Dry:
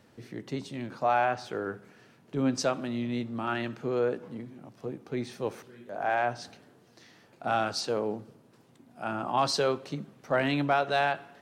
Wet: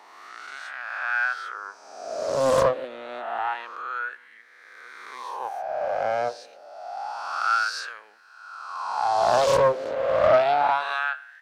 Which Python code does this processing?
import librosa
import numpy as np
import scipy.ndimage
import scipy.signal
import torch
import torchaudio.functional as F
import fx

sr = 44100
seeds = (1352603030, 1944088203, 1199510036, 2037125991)

y = fx.spec_swells(x, sr, rise_s=2.05)
y = fx.filter_lfo_highpass(y, sr, shape='sine', hz=0.28, low_hz=500.0, high_hz=1700.0, q=7.6)
y = fx.doppler_dist(y, sr, depth_ms=0.37)
y = y * 10.0 ** (-6.0 / 20.0)